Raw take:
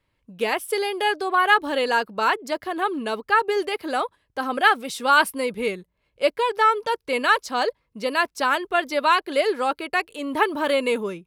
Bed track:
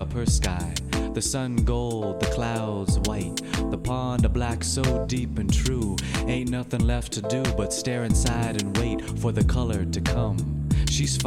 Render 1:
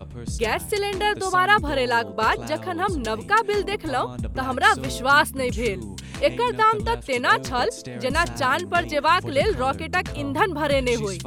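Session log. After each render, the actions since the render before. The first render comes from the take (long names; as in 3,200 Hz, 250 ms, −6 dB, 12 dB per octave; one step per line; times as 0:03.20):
mix in bed track −8.5 dB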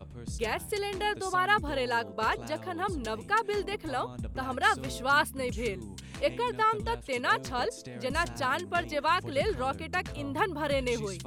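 level −8 dB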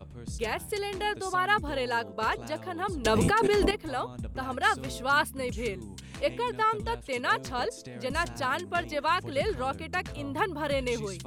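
0:03.05–0:03.71: envelope flattener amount 100%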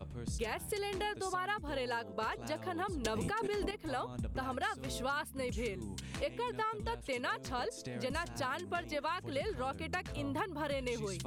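downward compressor 6 to 1, threshold −34 dBFS, peak gain reduction 14 dB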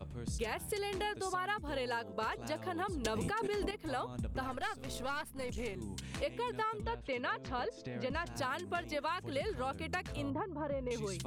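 0:04.47–0:05.76: gain on one half-wave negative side −7 dB
0:06.81–0:08.27: low-pass filter 3,600 Hz
0:10.30–0:10.91: low-pass filter 1,100 Hz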